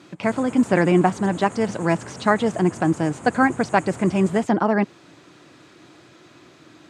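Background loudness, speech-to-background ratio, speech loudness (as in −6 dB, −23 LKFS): −38.0 LKFS, 17.0 dB, −21.0 LKFS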